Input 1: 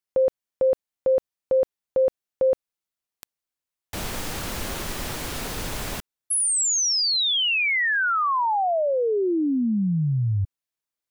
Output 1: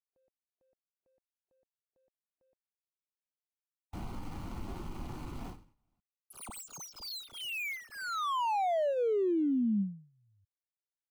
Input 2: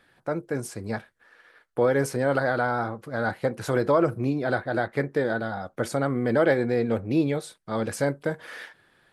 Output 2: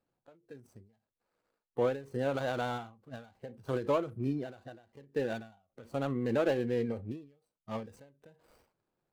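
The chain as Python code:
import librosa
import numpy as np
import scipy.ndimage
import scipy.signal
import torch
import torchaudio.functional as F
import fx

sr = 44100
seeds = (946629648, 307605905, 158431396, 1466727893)

y = scipy.signal.medfilt(x, 25)
y = fx.noise_reduce_blind(y, sr, reduce_db=10)
y = fx.end_taper(y, sr, db_per_s=130.0)
y = F.gain(torch.from_numpy(y), -6.5).numpy()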